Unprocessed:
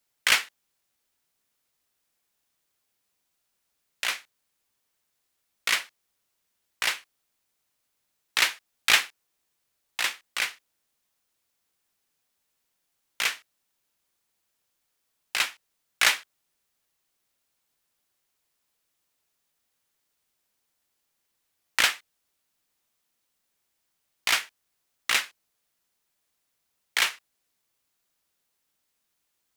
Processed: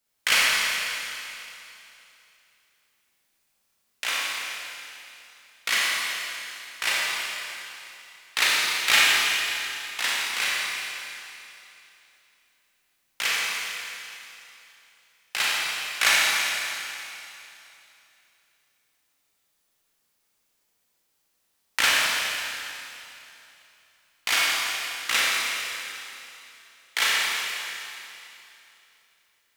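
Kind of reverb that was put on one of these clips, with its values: Schroeder reverb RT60 2.9 s, combs from 28 ms, DRR -6 dB; trim -2 dB

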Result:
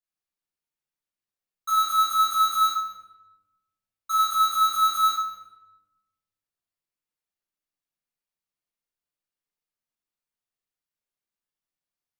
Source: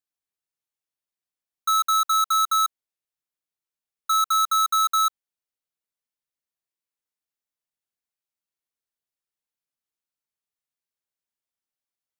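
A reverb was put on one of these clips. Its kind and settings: simulated room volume 530 m³, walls mixed, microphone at 5.8 m; trim -13 dB

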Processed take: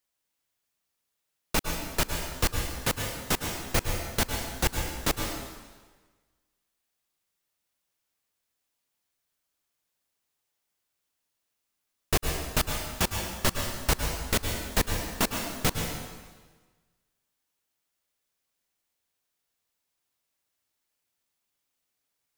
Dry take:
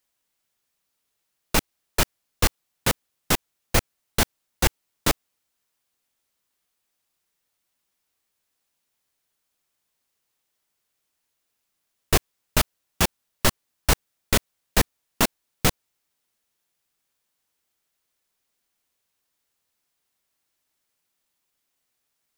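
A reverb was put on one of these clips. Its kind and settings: plate-style reverb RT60 1.4 s, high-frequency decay 0.9×, pre-delay 95 ms, DRR 3 dB; trim -5.5 dB

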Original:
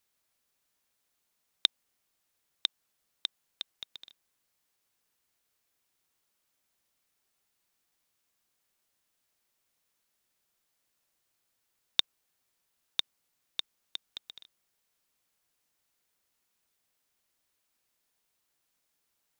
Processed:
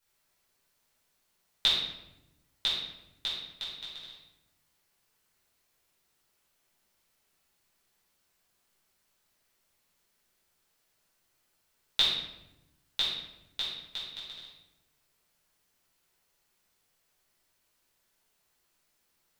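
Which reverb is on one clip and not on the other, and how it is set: simulated room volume 340 m³, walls mixed, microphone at 4.7 m; trim -6 dB

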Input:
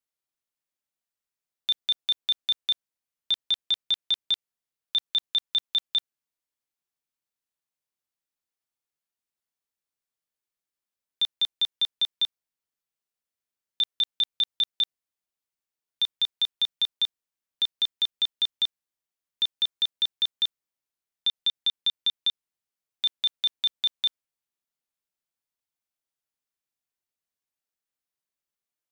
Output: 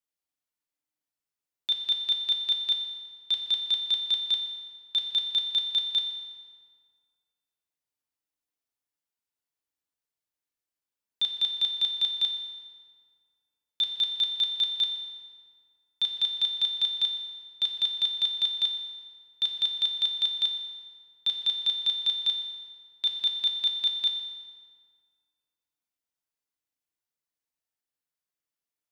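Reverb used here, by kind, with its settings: FDN reverb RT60 1.9 s, low-frequency decay 1.05×, high-frequency decay 0.7×, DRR 2.5 dB; trim -3.5 dB

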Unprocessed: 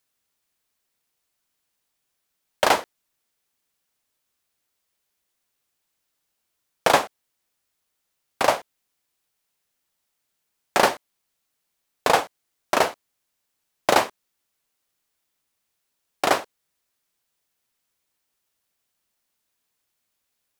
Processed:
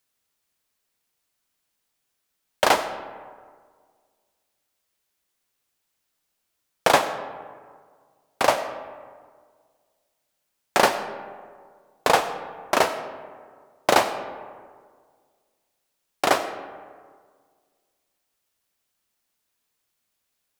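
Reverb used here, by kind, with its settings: algorithmic reverb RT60 1.8 s, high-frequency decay 0.45×, pre-delay 50 ms, DRR 11 dB

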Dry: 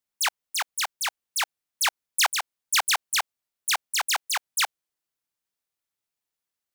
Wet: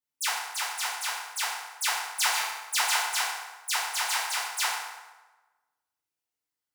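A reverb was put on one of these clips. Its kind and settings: FDN reverb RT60 1.2 s, low-frequency decay 0.75×, high-frequency decay 0.7×, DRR -9.5 dB; trim -11.5 dB

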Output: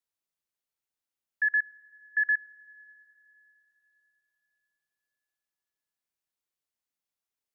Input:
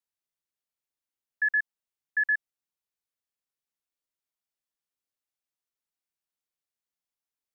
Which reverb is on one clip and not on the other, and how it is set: Schroeder reverb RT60 3.8 s, combs from 27 ms, DRR 19.5 dB

